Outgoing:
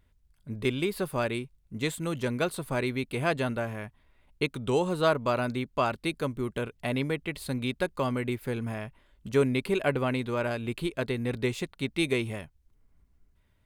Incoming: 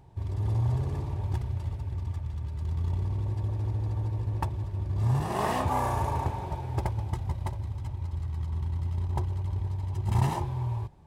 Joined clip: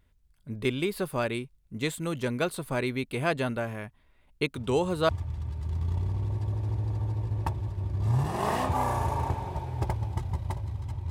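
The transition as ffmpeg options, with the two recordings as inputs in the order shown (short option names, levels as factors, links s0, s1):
-filter_complex "[1:a]asplit=2[s0][s1];[0:a]apad=whole_dur=11.1,atrim=end=11.1,atrim=end=5.092[s2];[s1]atrim=start=2.048:end=8.06[s3];[s0]atrim=start=1.52:end=2.05,asetpts=PTS-STARTPTS,volume=0.266,afade=t=in:d=0.004:c=hsin,afade=t=out:st=0.526:d=0.004:c=hsin,adelay=4560[s4];[s2][s3]acrossfade=d=0.004:c1=hsin:c2=hsin[s5];[s5][s4]amix=inputs=2:normalize=0"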